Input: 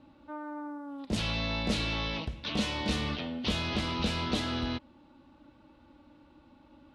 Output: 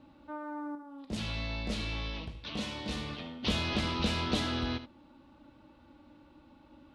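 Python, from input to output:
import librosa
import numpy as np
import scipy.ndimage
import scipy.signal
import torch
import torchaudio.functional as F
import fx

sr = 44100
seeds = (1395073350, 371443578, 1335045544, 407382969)

y = fx.comb_fb(x, sr, f0_hz=54.0, decay_s=0.8, harmonics='all', damping=0.0, mix_pct=60, at=(0.75, 3.43))
y = y + 10.0 ** (-12.5 / 20.0) * np.pad(y, (int(75 * sr / 1000.0), 0))[:len(y)]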